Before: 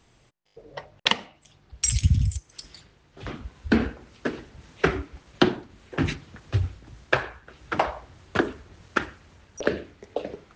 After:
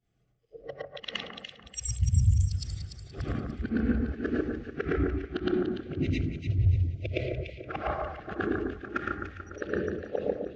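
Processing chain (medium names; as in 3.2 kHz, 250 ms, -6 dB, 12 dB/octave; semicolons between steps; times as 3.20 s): short-time spectra conjugated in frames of 227 ms; time-frequency box 5.79–7.68 s, 690–1900 Hz -23 dB; level rider gain up to 7 dB; dynamic bell 630 Hz, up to -4 dB, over -34 dBFS, Q 2; reverse; compression 10:1, threshold -31 dBFS, peak gain reduction 20.5 dB; reverse; Butterworth band-stop 950 Hz, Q 5; on a send: echo whose repeats swap between lows and highs 146 ms, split 1.7 kHz, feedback 71%, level -2 dB; on the sum: spectral contrast expander 1.5:1; trim +1 dB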